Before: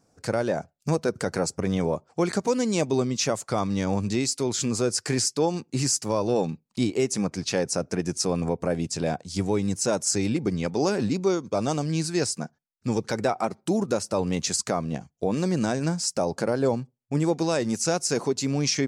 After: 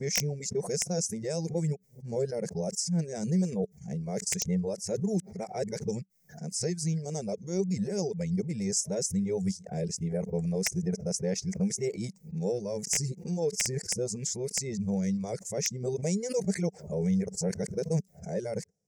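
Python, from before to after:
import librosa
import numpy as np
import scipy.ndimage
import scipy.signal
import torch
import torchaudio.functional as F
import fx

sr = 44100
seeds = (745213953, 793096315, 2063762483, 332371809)

y = np.flip(x).copy()
y = fx.high_shelf_res(y, sr, hz=3800.0, db=12.0, q=3.0)
y = (np.mod(10.0 ** (-3.5 / 20.0) * y + 1.0, 2.0) - 1.0) / 10.0 ** (-3.5 / 20.0)
y = fx.curve_eq(y, sr, hz=(110.0, 190.0, 270.0, 430.0, 790.0, 1200.0, 2100.0, 4300.0, 6600.0), db=(0, 11, -14, 6, -5, -18, 6, -20, -11))
y = fx.dereverb_blind(y, sr, rt60_s=0.61)
y = fx.pre_swell(y, sr, db_per_s=120.0)
y = y * librosa.db_to_amplitude(-8.5)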